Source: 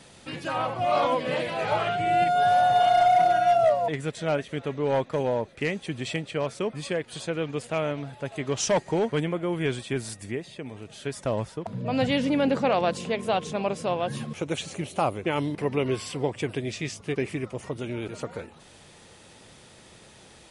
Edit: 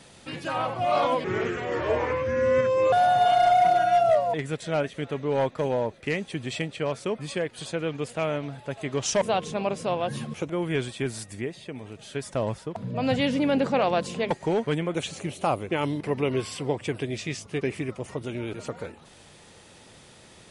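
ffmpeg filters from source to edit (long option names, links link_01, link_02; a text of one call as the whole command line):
ffmpeg -i in.wav -filter_complex "[0:a]asplit=7[link_01][link_02][link_03][link_04][link_05][link_06][link_07];[link_01]atrim=end=1.244[link_08];[link_02]atrim=start=1.24:end=2.47,asetpts=PTS-STARTPTS,asetrate=32193,aresample=44100,atrim=end_sample=74305,asetpts=PTS-STARTPTS[link_09];[link_03]atrim=start=2.466:end=8.762[link_10];[link_04]atrim=start=13.208:end=14.492[link_11];[link_05]atrim=start=9.398:end=13.212[link_12];[link_06]atrim=start=8.758:end=9.402[link_13];[link_07]atrim=start=14.488[link_14];[link_08][link_09]acrossfade=duration=0.004:curve1=hsin:curve2=hsin[link_15];[link_15][link_10]acrossfade=duration=0.004:curve1=hsin:curve2=hsin[link_16];[link_16][link_11]acrossfade=duration=0.004:curve1=hsin:curve2=hsin[link_17];[link_17][link_12]acrossfade=duration=0.004:curve1=hsin:curve2=hsin[link_18];[link_18][link_13]acrossfade=duration=0.004:curve1=hsin:curve2=hsin[link_19];[link_19][link_14]acrossfade=duration=0.004:curve1=hsin:curve2=hsin" out.wav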